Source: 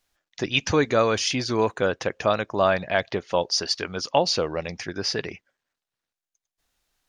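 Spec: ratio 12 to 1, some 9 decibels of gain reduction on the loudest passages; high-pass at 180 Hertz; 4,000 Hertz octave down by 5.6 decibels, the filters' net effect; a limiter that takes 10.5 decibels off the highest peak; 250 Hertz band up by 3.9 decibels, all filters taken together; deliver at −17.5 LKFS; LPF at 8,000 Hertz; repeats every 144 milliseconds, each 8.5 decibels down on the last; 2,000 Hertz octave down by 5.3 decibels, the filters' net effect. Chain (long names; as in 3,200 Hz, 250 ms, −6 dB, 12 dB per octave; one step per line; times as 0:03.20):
high-pass filter 180 Hz
low-pass filter 8,000 Hz
parametric band 250 Hz +6.5 dB
parametric band 2,000 Hz −6 dB
parametric band 4,000 Hz −5.5 dB
downward compressor 12 to 1, threshold −23 dBFS
brickwall limiter −20 dBFS
repeating echo 144 ms, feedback 38%, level −8.5 dB
level +14 dB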